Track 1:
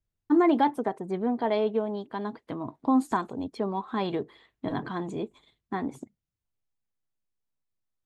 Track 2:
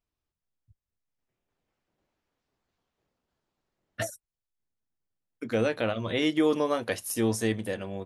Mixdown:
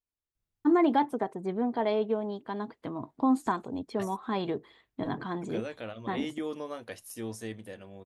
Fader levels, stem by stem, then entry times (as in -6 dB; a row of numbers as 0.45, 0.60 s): -2.0, -11.5 dB; 0.35, 0.00 s